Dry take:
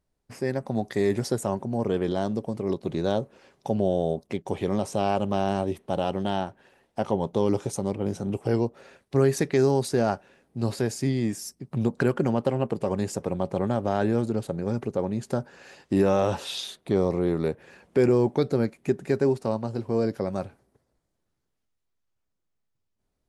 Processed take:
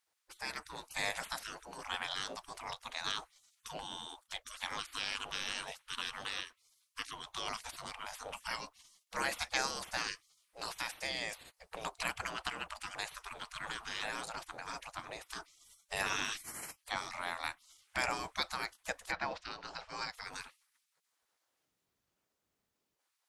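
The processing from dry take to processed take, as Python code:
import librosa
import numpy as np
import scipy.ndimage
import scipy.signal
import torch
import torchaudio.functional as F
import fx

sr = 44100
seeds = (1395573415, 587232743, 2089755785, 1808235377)

y = fx.lowpass(x, sr, hz=fx.line((19.1, 3800.0), (20.11, 8000.0)), slope=24, at=(19.1, 20.11), fade=0.02)
y = fx.spec_gate(y, sr, threshold_db=-25, keep='weak')
y = F.gain(torch.from_numpy(y), 6.0).numpy()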